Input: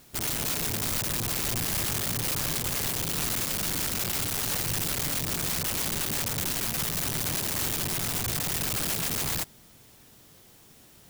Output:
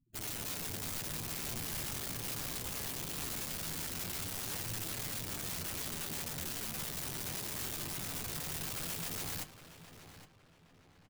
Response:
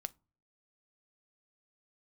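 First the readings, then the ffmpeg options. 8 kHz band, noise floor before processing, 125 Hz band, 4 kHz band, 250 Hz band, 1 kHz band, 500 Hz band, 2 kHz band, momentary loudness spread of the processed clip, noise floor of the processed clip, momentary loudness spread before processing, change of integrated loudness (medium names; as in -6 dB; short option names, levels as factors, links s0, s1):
-10.5 dB, -55 dBFS, -10.5 dB, -10.5 dB, -10.0 dB, -10.0 dB, -10.0 dB, -10.0 dB, 2 LU, -64 dBFS, 1 LU, -10.5 dB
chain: -filter_complex "[0:a]afftfilt=real='re*gte(hypot(re,im),0.00562)':imag='im*gte(hypot(re,im),0.00562)':win_size=1024:overlap=0.75,flanger=delay=8.9:depth=7.4:regen=47:speed=0.2:shape=triangular,asplit=2[s0][s1];[s1]adelay=815,lowpass=f=3400:p=1,volume=0.282,asplit=2[s2][s3];[s3]adelay=815,lowpass=f=3400:p=1,volume=0.39,asplit=2[s4][s5];[s5]adelay=815,lowpass=f=3400:p=1,volume=0.39,asplit=2[s6][s7];[s7]adelay=815,lowpass=f=3400:p=1,volume=0.39[s8];[s2][s4][s6][s8]amix=inputs=4:normalize=0[s9];[s0][s9]amix=inputs=2:normalize=0,volume=0.473"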